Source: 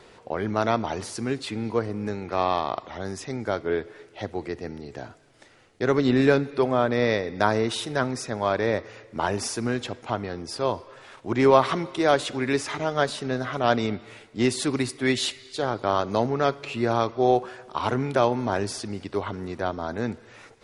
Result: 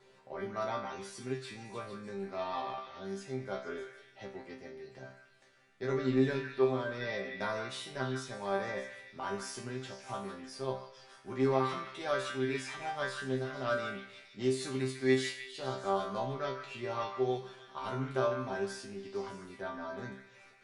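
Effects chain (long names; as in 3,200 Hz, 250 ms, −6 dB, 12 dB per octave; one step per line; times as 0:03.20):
resonators tuned to a chord C3 fifth, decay 0.39 s
echo through a band-pass that steps 152 ms, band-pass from 1,700 Hz, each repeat 0.7 octaves, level −4 dB
level +2.5 dB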